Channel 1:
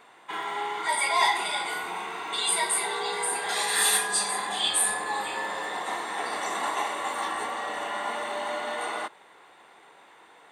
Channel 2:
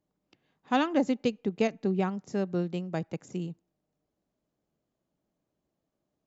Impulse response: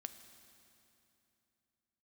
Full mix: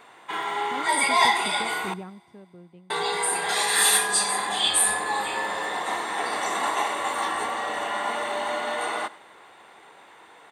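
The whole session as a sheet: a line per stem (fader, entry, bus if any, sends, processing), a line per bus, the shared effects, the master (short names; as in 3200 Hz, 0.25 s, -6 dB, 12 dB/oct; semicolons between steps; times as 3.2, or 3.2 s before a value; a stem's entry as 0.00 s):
+2.0 dB, 0.00 s, muted 1.94–2.9, send -10.5 dB, echo send -19 dB, dry
2 s -6.5 dB -> 2.42 s -17 dB, 0.00 s, no send, no echo send, LPF 2500 Hz; limiter -21.5 dBFS, peak gain reduction 8 dB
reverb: on, RT60 2.9 s, pre-delay 4 ms
echo: echo 97 ms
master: bell 93 Hz +4.5 dB 0.77 oct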